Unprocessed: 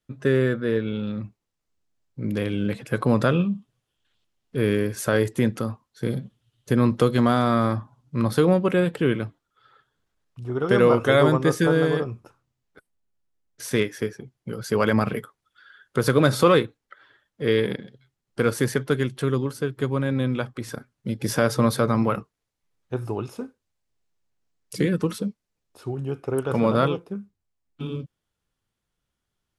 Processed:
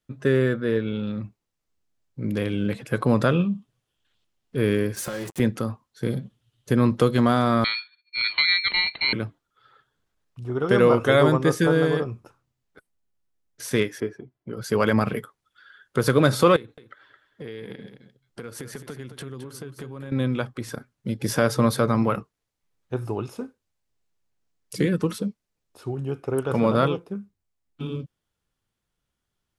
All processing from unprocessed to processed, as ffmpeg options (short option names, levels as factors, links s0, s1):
-filter_complex "[0:a]asettb=1/sr,asplit=3[s0][s1][s2];[s0]atrim=end=4.964[s3];[s1]atrim=start=4.96:end=5.4,asetpts=PTS-STARTPTS,afade=t=in:d=0.004:c=qsin,afade=t=out:st=0.436:d=0.004:c=qsin,aecho=1:1:5.6:0.74,atrim=end_sample=19404,acompressor=threshold=0.0447:ratio=8:attack=3.2:release=140:knee=1:detection=peak,acrusher=bits=5:mix=0:aa=0.5[s4];[s2]atrim=start=5.396[s5];[s3][s4]acrossfade=d=0.004:c1=hsin:c2=qsin[s6];[s6][s5]acrossfade=d=0.004:c1=qsin:c2=hsin,asettb=1/sr,asplit=3[s7][s8][s9];[s7]atrim=end=7.644[s10];[s8]atrim=start=7.64:end=9.13,asetpts=PTS-STARTPTS,afade=t=in:d=0.004:c=qsin,afade=t=out:st=1.486:d=0.004:c=qsin,agate=range=0.0224:threshold=0.00141:ratio=3:release=100:detection=peak,lowpass=f=3000:t=q:w=0.5098,lowpass=f=3000:t=q:w=0.6013,lowpass=f=3000:t=q:w=0.9,lowpass=f=3000:t=q:w=2.563,afreqshift=-3500,aeval=exprs='val(0)*sin(2*PI*980*n/s)':c=same[s11];[s9]atrim=start=9.126[s12];[s10][s11]acrossfade=d=0.004:c1=hsin:c2=qsin[s13];[s13][s12]acrossfade=d=0.004:c1=qsin:c2=hsin,asettb=1/sr,asplit=3[s14][s15][s16];[s14]atrim=end=14.004[s17];[s15]atrim=start=14:end=14.57,asetpts=PTS-STARTPTS,afade=t=in:d=0.004:c=qsin,afade=t=out:st=0.566:d=0.004:c=qsin,lowpass=f=1200:p=1,lowshelf=f=71:g=-11,aecho=1:1:3:0.35,atrim=end_sample=25137[s18];[s16]atrim=start=14.566[s19];[s17][s18]acrossfade=d=0.004:c1=hsin:c2=qsin[s20];[s20][s19]acrossfade=d=0.004:c1=qsin:c2=hsin,asettb=1/sr,asplit=3[s21][s22][s23];[s21]atrim=end=16.564[s24];[s22]atrim=start=16.56:end=20.12,asetpts=PTS-STARTPTS,afade=t=in:d=0.004:c=qsin,afade=t=out:st=3.556:d=0.004:c=qsin,acompressor=threshold=0.0224:ratio=8:attack=3.2:release=140:knee=1:detection=peak,aecho=1:1:216:0.282,atrim=end_sample=156996[s25];[s23]atrim=start=20.116[s26];[s24][s25]acrossfade=d=0.004:c1=hsin:c2=qsin[s27];[s27][s26]acrossfade=d=0.004:c1=qsin:c2=hsin"